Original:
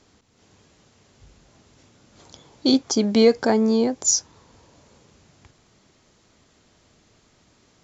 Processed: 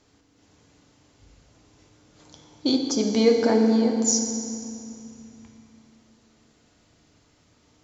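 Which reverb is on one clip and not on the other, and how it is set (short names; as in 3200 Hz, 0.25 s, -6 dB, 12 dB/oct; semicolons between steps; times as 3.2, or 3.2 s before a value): FDN reverb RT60 2.4 s, low-frequency decay 1.5×, high-frequency decay 0.9×, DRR 2.5 dB; gain -4.5 dB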